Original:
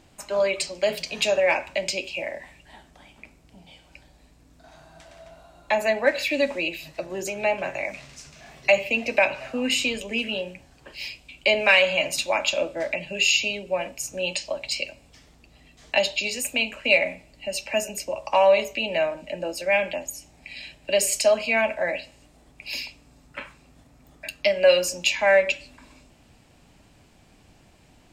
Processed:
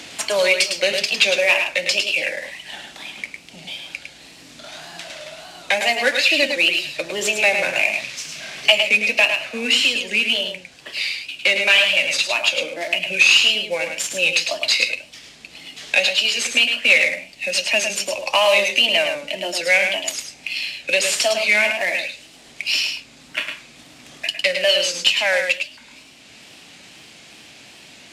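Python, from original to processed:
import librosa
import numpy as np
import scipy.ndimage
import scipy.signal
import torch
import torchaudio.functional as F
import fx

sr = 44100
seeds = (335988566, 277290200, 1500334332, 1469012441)

p1 = fx.cvsd(x, sr, bps=64000)
p2 = fx.wow_flutter(p1, sr, seeds[0], rate_hz=2.1, depth_cents=130.0)
p3 = fx.weighting(p2, sr, curve='D')
p4 = fx.rider(p3, sr, range_db=10, speed_s=2.0)
p5 = p4 + fx.echo_single(p4, sr, ms=105, db=-6.5, dry=0)
p6 = fx.band_squash(p5, sr, depth_pct=40)
y = F.gain(torch.from_numpy(p6), -2.0).numpy()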